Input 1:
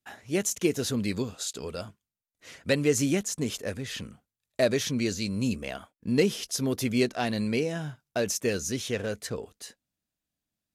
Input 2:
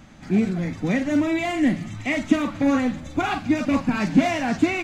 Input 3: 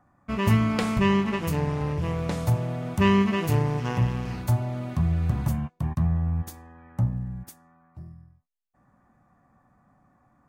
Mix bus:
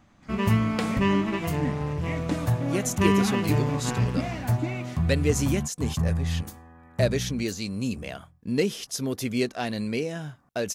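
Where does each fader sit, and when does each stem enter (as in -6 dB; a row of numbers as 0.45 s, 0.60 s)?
-1.0 dB, -12.5 dB, -1.5 dB; 2.40 s, 0.00 s, 0.00 s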